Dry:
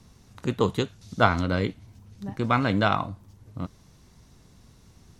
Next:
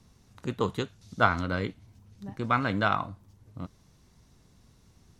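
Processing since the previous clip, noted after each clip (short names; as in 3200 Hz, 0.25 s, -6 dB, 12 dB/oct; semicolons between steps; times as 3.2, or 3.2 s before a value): dynamic EQ 1400 Hz, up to +5 dB, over -38 dBFS, Q 1.4; gain -5.5 dB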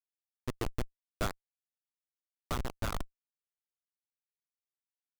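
Schmitt trigger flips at -21.5 dBFS; vocal rider 2 s; gain +1.5 dB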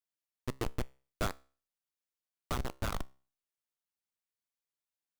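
resonator 66 Hz, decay 0.39 s, harmonics all, mix 30%; gain +2 dB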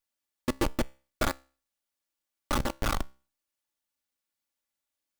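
minimum comb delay 3.5 ms; gain +7 dB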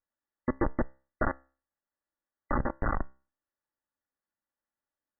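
brick-wall FIR low-pass 2000 Hz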